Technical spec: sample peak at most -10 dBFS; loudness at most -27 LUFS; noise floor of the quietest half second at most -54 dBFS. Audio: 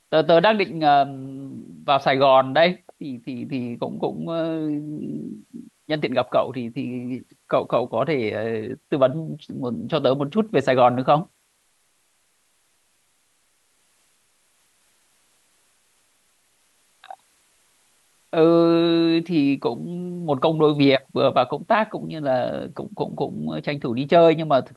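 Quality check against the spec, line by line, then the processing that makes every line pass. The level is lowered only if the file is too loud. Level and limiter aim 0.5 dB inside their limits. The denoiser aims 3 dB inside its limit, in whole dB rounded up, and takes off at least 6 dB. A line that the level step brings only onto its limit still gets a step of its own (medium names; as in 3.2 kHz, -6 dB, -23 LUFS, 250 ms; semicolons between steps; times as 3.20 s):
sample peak -5.5 dBFS: fail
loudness -21.5 LUFS: fail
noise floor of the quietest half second -65 dBFS: pass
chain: trim -6 dB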